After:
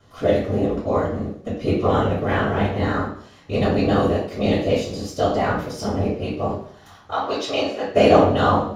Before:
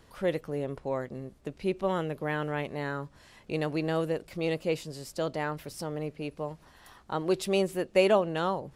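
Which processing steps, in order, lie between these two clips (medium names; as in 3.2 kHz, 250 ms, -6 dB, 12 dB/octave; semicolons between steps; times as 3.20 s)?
7.11–7.85 s: three-band isolator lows -23 dB, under 490 Hz, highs -22 dB, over 6.8 kHz; waveshaping leveller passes 1; whisper effect; reverberation RT60 0.60 s, pre-delay 3 ms, DRR -4 dB; trim -1.5 dB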